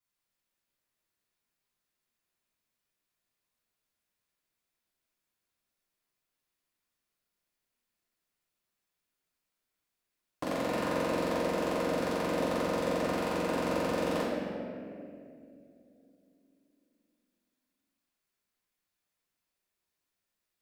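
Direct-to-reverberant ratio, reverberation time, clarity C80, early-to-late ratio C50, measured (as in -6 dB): -11.0 dB, 2.6 s, 0.0 dB, -1.5 dB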